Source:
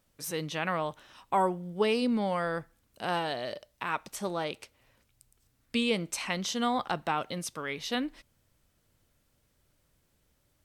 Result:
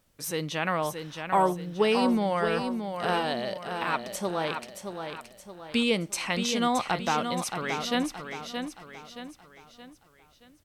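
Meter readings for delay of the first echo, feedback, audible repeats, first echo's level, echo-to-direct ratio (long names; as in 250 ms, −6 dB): 623 ms, 43%, 4, −7.0 dB, −6.0 dB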